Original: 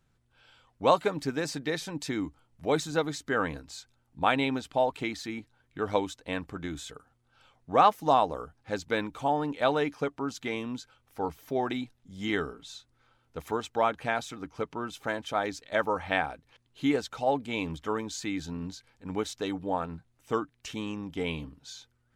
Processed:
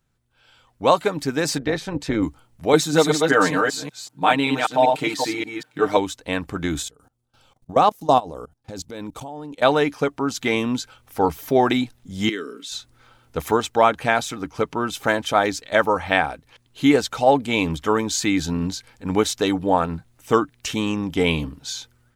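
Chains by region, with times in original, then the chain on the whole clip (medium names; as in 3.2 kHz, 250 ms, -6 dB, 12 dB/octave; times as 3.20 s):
1.58–2.23 s: low-pass 1.9 kHz 6 dB/octave + AM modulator 210 Hz, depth 40%
2.73–5.97 s: chunks repeated in reverse 193 ms, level -4 dB + high-pass 160 Hz + comb 6.6 ms, depth 75%
6.82–9.62 s: level held to a coarse grid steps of 22 dB + peaking EQ 1.8 kHz -9 dB 1.7 oct
12.29–12.72 s: high-pass 170 Hz 24 dB/octave + static phaser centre 320 Hz, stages 4 + compression 2:1, threshold -46 dBFS
whole clip: treble shelf 7.6 kHz +6.5 dB; level rider gain up to 14 dB; trim -1 dB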